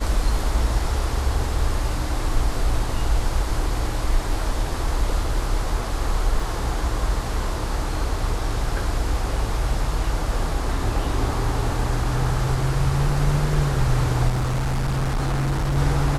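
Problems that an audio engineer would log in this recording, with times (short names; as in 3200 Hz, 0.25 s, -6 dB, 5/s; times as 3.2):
6.4 gap 2.4 ms
14.28–15.78 clipped -19 dBFS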